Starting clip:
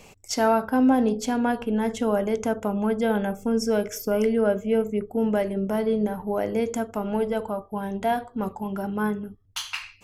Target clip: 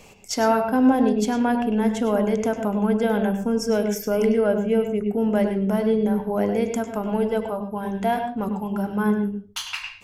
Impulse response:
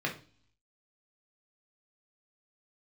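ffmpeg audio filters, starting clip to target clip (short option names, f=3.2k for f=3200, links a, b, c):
-filter_complex "[0:a]asplit=2[a][b];[1:a]atrim=start_sample=2205,asetrate=61740,aresample=44100,adelay=99[c];[b][c]afir=irnorm=-1:irlink=0,volume=-10.5dB[d];[a][d]amix=inputs=2:normalize=0,volume=1dB"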